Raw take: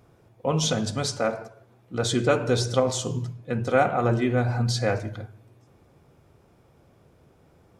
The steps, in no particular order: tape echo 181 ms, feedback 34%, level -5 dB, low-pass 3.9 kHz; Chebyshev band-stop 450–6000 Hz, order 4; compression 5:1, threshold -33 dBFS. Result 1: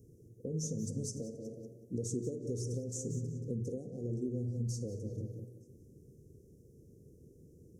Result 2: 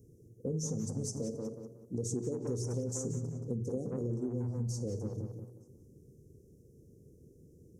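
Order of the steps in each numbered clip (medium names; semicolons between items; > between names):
tape echo > compression > Chebyshev band-stop; Chebyshev band-stop > tape echo > compression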